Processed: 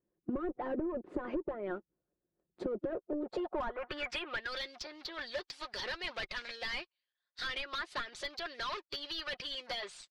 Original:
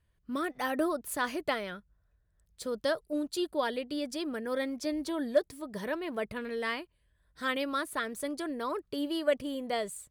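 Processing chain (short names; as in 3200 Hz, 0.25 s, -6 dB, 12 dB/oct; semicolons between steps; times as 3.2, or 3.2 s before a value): low shelf 310 Hz -5 dB; sample leveller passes 3; harmonic-percussive split harmonic -15 dB; in parallel at -4 dB: wavefolder -31 dBFS; on the sum: band-pass sweep 330 Hz -> 4600 Hz, 3.06–4.49; comb 5.6 ms, depth 39%; treble ducked by the level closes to 1400 Hz, closed at -31.5 dBFS; overdrive pedal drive 20 dB, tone 4400 Hz, clips at -18.5 dBFS; tilt -4 dB/oct; compressor 10:1, threshold -33 dBFS, peak gain reduction 16 dB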